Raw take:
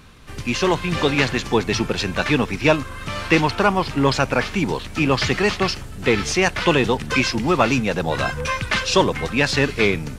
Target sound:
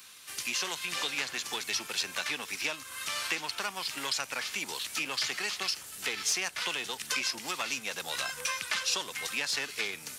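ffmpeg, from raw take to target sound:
ffmpeg -i in.wav -filter_complex "[0:a]aeval=exprs='0.794*(cos(1*acos(clip(val(0)/0.794,-1,1)))-cos(1*PI/2))+0.0794*(cos(4*acos(clip(val(0)/0.794,-1,1)))-cos(4*PI/2))':channel_layout=same,acrossover=split=250|1500[link_01][link_02][link_03];[link_01]acompressor=threshold=-29dB:ratio=4[link_04];[link_02]acompressor=threshold=-27dB:ratio=4[link_05];[link_03]acompressor=threshold=-33dB:ratio=4[link_06];[link_04][link_05][link_06]amix=inputs=3:normalize=0,aderivative,volume=7.5dB" out.wav

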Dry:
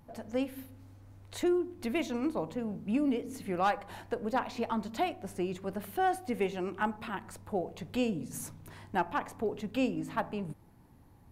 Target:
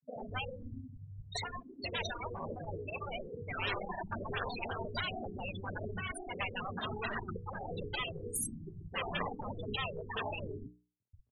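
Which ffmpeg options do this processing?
ffmpeg -i in.wav -filter_complex "[0:a]adynamicequalizer=threshold=0.00251:dfrequency=190:dqfactor=5.4:tfrequency=190:tqfactor=5.4:attack=5:release=100:ratio=0.375:range=2.5:mode=cutabove:tftype=bell,volume=26dB,asoftclip=hard,volume=-26dB,asettb=1/sr,asplit=3[link_01][link_02][link_03];[link_01]atrim=end=6.724[link_04];[link_02]atrim=start=6.72:end=9.24,asetpts=PTS-STARTPTS,afade=type=in:duration=0.004:curve=qsin,afade=type=out:start_time=2.516:duration=0.004:curve=qsin,aecho=1:1:2.5:0.31,atrim=end_sample=111132[link_05];[link_03]atrim=start=9.236[link_06];[link_04][link_05]acrossfade=duration=0.004:curve1=hsin:curve2=qsin[link_07];[link_07][link_06]acrossfade=duration=0.004:curve1=qsin:curve2=hsin,afftfilt=real='re*gte(hypot(re,im),0.0178)':imag='im*gte(hypot(re,im),0.0178)':win_size=1024:overlap=0.75,bandreject=frequency=60:width_type=h:width=6,bandreject=frequency=120:width_type=h:width=6,bandreject=frequency=180:width_type=h:width=6,bandreject=frequency=240:width_type=h:width=6,bandreject=frequency=300:width_type=h:width=6,bandreject=frequency=360:width_type=h:width=6,bandreject=frequency=420:width_type=h:width=6,bandreject=frequency=480:width_type=h:width=6,acompressor=threshold=-36dB:ratio=8,acrossover=split=250[link_08][link_09];[link_08]adelay=130[link_10];[link_10][link_09]amix=inputs=2:normalize=0,afftfilt=real='re*lt(hypot(re,im),0.0158)':imag='im*lt(hypot(re,im),0.0158)':win_size=1024:overlap=0.75,superequalizer=6b=0.501:15b=0.316,volume=18dB" out.wav

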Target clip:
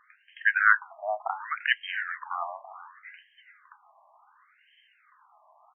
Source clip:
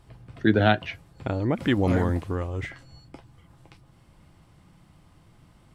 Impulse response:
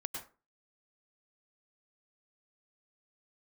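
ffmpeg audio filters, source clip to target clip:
-filter_complex "[0:a]asplit=2[link_01][link_02];[link_02]adelay=421,lowpass=frequency=3100:poles=1,volume=-15dB,asplit=2[link_03][link_04];[link_04]adelay=421,lowpass=frequency=3100:poles=1,volume=0.4,asplit=2[link_05][link_06];[link_06]adelay=421,lowpass=frequency=3100:poles=1,volume=0.4,asplit=2[link_07][link_08];[link_08]adelay=421,lowpass=frequency=3100:poles=1,volume=0.4[link_09];[link_01][link_03][link_05][link_07][link_09]amix=inputs=5:normalize=0,aexciter=amount=11.2:drive=4.9:freq=3800,afftfilt=real='re*between(b*sr/1024,830*pow(2300/830,0.5+0.5*sin(2*PI*0.68*pts/sr))/1.41,830*pow(2300/830,0.5+0.5*sin(2*PI*0.68*pts/sr))*1.41)':imag='im*between(b*sr/1024,830*pow(2300/830,0.5+0.5*sin(2*PI*0.68*pts/sr))/1.41,830*pow(2300/830,0.5+0.5*sin(2*PI*0.68*pts/sr))*1.41)':win_size=1024:overlap=0.75,volume=8.5dB"

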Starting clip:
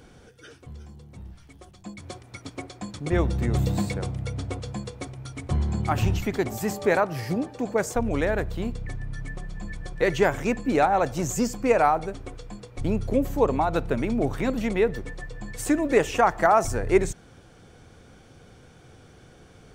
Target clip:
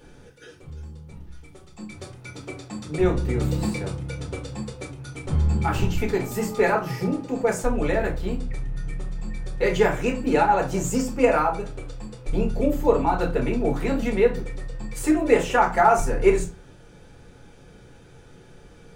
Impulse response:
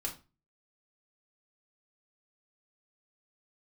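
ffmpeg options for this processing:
-filter_complex "[0:a]bandreject=frequency=50:width_type=h:width=6,bandreject=frequency=100:width_type=h:width=6[link_01];[1:a]atrim=start_sample=2205[link_02];[link_01][link_02]afir=irnorm=-1:irlink=0,asetrate=45938,aresample=44100"

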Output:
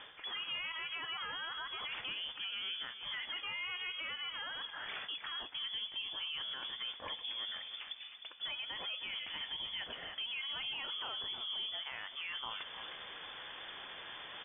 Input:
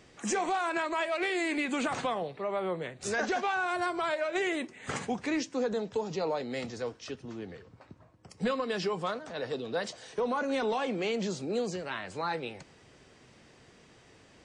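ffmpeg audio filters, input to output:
ffmpeg -i in.wav -filter_complex "[0:a]highshelf=frequency=2000:gain=10.5,areverse,acompressor=threshold=-41dB:ratio=6,areverse,asplit=2[link_01][link_02];[link_02]adelay=309,volume=-13dB,highshelf=frequency=4000:gain=-6.95[link_03];[link_01][link_03]amix=inputs=2:normalize=0,lowpass=frequency=3100:width_type=q:width=0.5098,lowpass=frequency=3100:width_type=q:width=0.6013,lowpass=frequency=3100:width_type=q:width=0.9,lowpass=frequency=3100:width_type=q:width=2.563,afreqshift=-3600,alimiter=level_in=17dB:limit=-24dB:level=0:latency=1:release=175,volume=-17dB,volume=8dB" out.wav

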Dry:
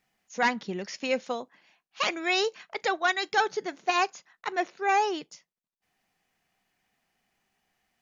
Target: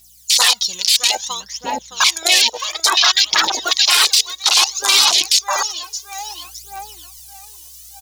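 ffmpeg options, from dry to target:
ffmpeg -i in.wav -filter_complex "[0:a]aecho=1:1:6.4:0.4,aeval=exprs='val(0)+0.000891*(sin(2*PI*60*n/s)+sin(2*PI*2*60*n/s)/2+sin(2*PI*3*60*n/s)/3+sin(2*PI*4*60*n/s)/4+sin(2*PI*5*60*n/s)/5)':channel_layout=same,asplit=2[link_01][link_02];[link_02]adelay=615,lowpass=frequency=3000:poles=1,volume=-6.5dB,asplit=2[link_03][link_04];[link_04]adelay=615,lowpass=frequency=3000:poles=1,volume=0.42,asplit=2[link_05][link_06];[link_06]adelay=615,lowpass=frequency=3000:poles=1,volume=0.42,asplit=2[link_07][link_08];[link_08]adelay=615,lowpass=frequency=3000:poles=1,volume=0.42,asplit=2[link_09][link_10];[link_10]adelay=615,lowpass=frequency=3000:poles=1,volume=0.42[link_11];[link_01][link_03][link_05][link_07][link_09][link_11]amix=inputs=6:normalize=0,aphaser=in_gain=1:out_gain=1:delay=2.1:decay=0.67:speed=0.59:type=triangular,asetnsamples=nb_out_samples=441:pad=0,asendcmd='0.96 highshelf g 7;3.71 highshelf g 14',highshelf=frequency=2800:width_type=q:width=3:gain=14,aexciter=amount=6.7:drive=9.7:freq=6400,afwtdn=0.0794,afftfilt=real='re*lt(hypot(re,im),0.251)':imag='im*lt(hypot(re,im),0.251)':win_size=1024:overlap=0.75,equalizer=frequency=125:width_type=o:width=1:gain=-3,equalizer=frequency=250:width_type=o:width=1:gain=-6,equalizer=frequency=500:width_type=o:width=1:gain=-4,equalizer=frequency=1000:width_type=o:width=1:gain=10,equalizer=frequency=2000:width_type=o:width=1:gain=8,equalizer=frequency=4000:width_type=o:width=1:gain=10,dynaudnorm=framelen=260:gausssize=5:maxgain=8dB,alimiter=level_in=11dB:limit=-1dB:release=50:level=0:latency=1,volume=-1dB" out.wav

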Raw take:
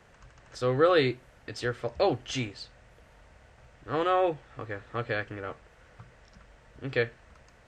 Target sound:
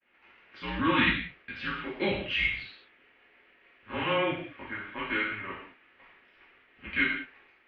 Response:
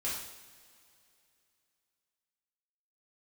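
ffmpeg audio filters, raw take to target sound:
-filter_complex "[0:a]agate=range=-33dB:threshold=-50dB:ratio=3:detection=peak,lowshelf=frequency=450:gain=-8.5,aexciter=amount=2.7:drive=8.1:freq=2000[link_01];[1:a]atrim=start_sample=2205,afade=type=out:start_time=0.27:duration=0.01,atrim=end_sample=12348[link_02];[link_01][link_02]afir=irnorm=-1:irlink=0,highpass=frequency=230:width_type=q:width=0.5412,highpass=frequency=230:width_type=q:width=1.307,lowpass=frequency=3100:width_type=q:width=0.5176,lowpass=frequency=3100:width_type=q:width=0.7071,lowpass=frequency=3100:width_type=q:width=1.932,afreqshift=-200,volume=-3dB"

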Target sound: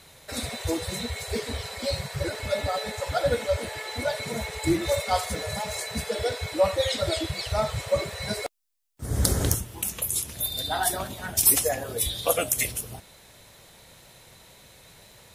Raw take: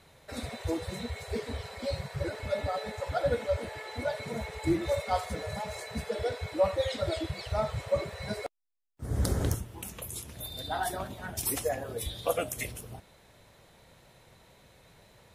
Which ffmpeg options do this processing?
ffmpeg -i in.wav -af "highshelf=frequency=3000:gain=10.5,volume=3.5dB" out.wav

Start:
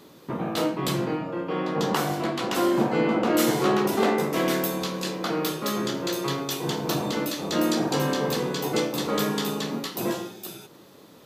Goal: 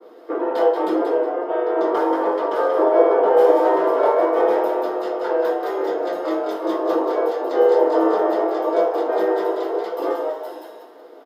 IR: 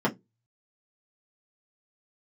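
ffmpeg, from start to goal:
-filter_complex "[0:a]afreqshift=180,asplit=5[link_01][link_02][link_03][link_04][link_05];[link_02]adelay=182,afreqshift=95,volume=-5dB[link_06];[link_03]adelay=364,afreqshift=190,volume=-15.2dB[link_07];[link_04]adelay=546,afreqshift=285,volume=-25.3dB[link_08];[link_05]adelay=728,afreqshift=380,volume=-35.5dB[link_09];[link_01][link_06][link_07][link_08][link_09]amix=inputs=5:normalize=0[link_10];[1:a]atrim=start_sample=2205[link_11];[link_10][link_11]afir=irnorm=-1:irlink=0,acrossover=split=250|1200|6600[link_12][link_13][link_14][link_15];[link_14]volume=15dB,asoftclip=hard,volume=-15dB[link_16];[link_12][link_13][link_16][link_15]amix=inputs=4:normalize=0,adynamicequalizer=threshold=0.0708:dfrequency=1500:dqfactor=0.7:tfrequency=1500:tqfactor=0.7:attack=5:release=100:ratio=0.375:range=4:mode=cutabove:tftype=highshelf,volume=-10dB"

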